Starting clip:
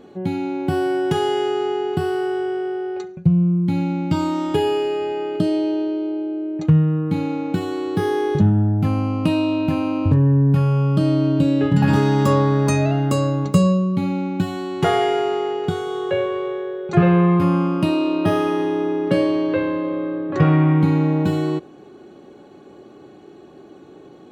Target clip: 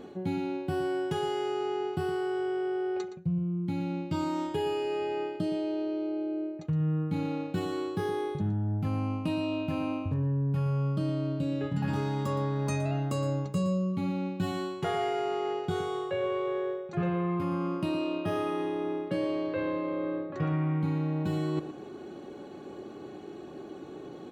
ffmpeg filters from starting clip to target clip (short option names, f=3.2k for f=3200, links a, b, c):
-af "areverse,acompressor=threshold=-28dB:ratio=6,areverse,aecho=1:1:117:0.251"